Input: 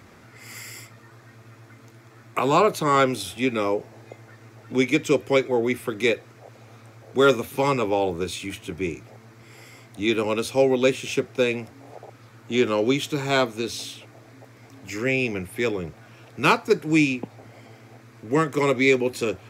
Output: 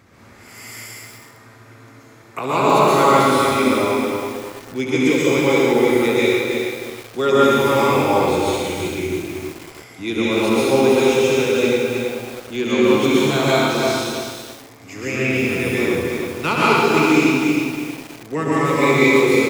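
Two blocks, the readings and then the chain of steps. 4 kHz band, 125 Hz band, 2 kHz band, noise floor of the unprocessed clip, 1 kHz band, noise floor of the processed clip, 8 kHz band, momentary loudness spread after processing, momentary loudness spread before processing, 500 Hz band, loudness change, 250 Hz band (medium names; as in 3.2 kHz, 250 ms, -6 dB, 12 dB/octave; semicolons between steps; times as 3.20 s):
+6.5 dB, +6.0 dB, +6.5 dB, -50 dBFS, +7.5 dB, -44 dBFS, +7.0 dB, 16 LU, 14 LU, +6.5 dB, +6.0 dB, +7.5 dB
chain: on a send: loudspeakers at several distances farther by 24 m -7 dB, 38 m -8 dB; on the sum: plate-style reverb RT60 1.3 s, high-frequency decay 0.9×, pre-delay 115 ms, DRR -7 dB; bit-crushed delay 320 ms, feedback 35%, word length 5-bit, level -4.5 dB; trim -3.5 dB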